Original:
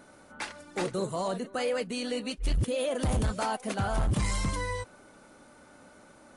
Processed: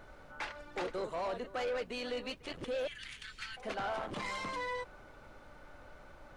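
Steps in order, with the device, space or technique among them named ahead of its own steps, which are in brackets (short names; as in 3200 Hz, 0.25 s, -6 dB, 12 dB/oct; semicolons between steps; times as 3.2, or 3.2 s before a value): 2.87–3.57 steep high-pass 1700 Hz 36 dB/oct; aircraft cabin announcement (BPF 400–3500 Hz; soft clip -31.5 dBFS, distortion -12 dB; brown noise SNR 15 dB)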